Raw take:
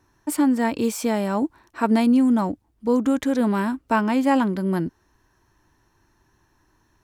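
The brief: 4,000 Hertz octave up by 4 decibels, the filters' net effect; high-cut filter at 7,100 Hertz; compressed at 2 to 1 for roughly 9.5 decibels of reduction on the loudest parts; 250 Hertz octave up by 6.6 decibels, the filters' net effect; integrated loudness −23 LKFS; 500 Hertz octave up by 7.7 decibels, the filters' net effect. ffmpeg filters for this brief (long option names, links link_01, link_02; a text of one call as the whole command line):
ffmpeg -i in.wav -af "lowpass=7100,equalizer=frequency=250:width_type=o:gain=5.5,equalizer=frequency=500:width_type=o:gain=7.5,equalizer=frequency=4000:width_type=o:gain=5.5,acompressor=threshold=-26dB:ratio=2,volume=1dB" out.wav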